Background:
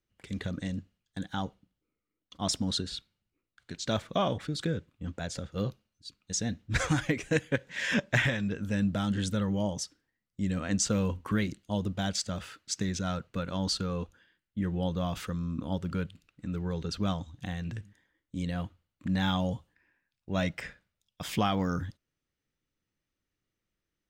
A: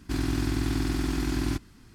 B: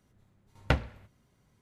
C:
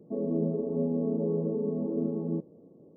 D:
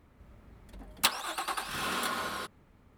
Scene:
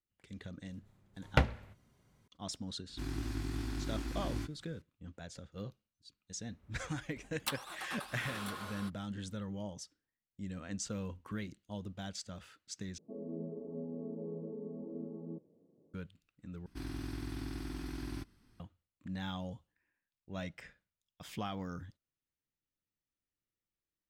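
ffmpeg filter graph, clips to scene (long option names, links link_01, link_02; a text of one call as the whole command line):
ffmpeg -i bed.wav -i cue0.wav -i cue1.wav -i cue2.wav -i cue3.wav -filter_complex "[1:a]asplit=2[link_01][link_02];[0:a]volume=-12dB[link_03];[link_01]flanger=delay=16.5:depth=4.7:speed=2.5[link_04];[link_02]bandreject=frequency=7000:width=5.1[link_05];[link_03]asplit=3[link_06][link_07][link_08];[link_06]atrim=end=12.984[link_09];[3:a]atrim=end=2.96,asetpts=PTS-STARTPTS,volume=-13.5dB[link_10];[link_07]atrim=start=15.936:end=16.664[link_11];[link_05]atrim=end=1.94,asetpts=PTS-STARTPTS,volume=-14dB[link_12];[link_08]atrim=start=18.596[link_13];[2:a]atrim=end=1.61,asetpts=PTS-STARTPTS,volume=-1dB,afade=type=in:duration=0.004:curve=hsin,afade=type=out:start_time=1.606:duration=0.004:curve=hsin,adelay=670[link_14];[link_04]atrim=end=1.94,asetpts=PTS-STARTPTS,volume=-9dB,afade=type=in:duration=0.004:curve=hsin,afade=type=out:start_time=1.936:duration=0.004:curve=hsin,adelay=2880[link_15];[4:a]atrim=end=2.97,asetpts=PTS-STARTPTS,volume=-11dB,afade=type=in:duration=0.004:curve=hsin,afade=type=out:start_time=2.966:duration=0.004:curve=hsin,adelay=6430[link_16];[link_09][link_10]acrossfade=duration=0.004:curve1=hsin:curve2=hsin[link_17];[link_17][link_11]acrossfade=duration=0.004:curve1=hsin:curve2=hsin[link_18];[link_18][link_12]acrossfade=duration=0.004:curve1=hsin:curve2=hsin[link_19];[link_19][link_13]acrossfade=duration=0.004:curve1=hsin:curve2=hsin[link_20];[link_20][link_14][link_15][link_16]amix=inputs=4:normalize=0" out.wav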